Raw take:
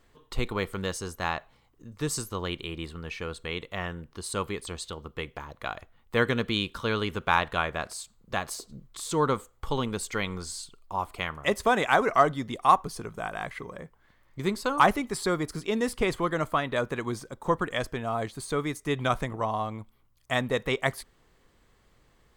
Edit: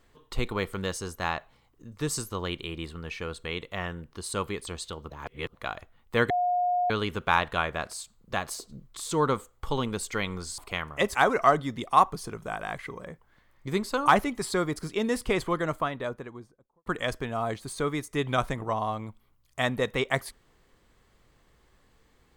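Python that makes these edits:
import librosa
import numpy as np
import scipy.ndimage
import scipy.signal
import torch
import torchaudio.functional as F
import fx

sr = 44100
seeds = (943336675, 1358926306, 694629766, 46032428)

y = fx.studio_fade_out(x, sr, start_s=16.17, length_s=1.41)
y = fx.edit(y, sr, fx.reverse_span(start_s=5.1, length_s=0.44),
    fx.bleep(start_s=6.3, length_s=0.6, hz=716.0, db=-22.5),
    fx.cut(start_s=10.58, length_s=0.47),
    fx.cut(start_s=11.62, length_s=0.25), tone=tone)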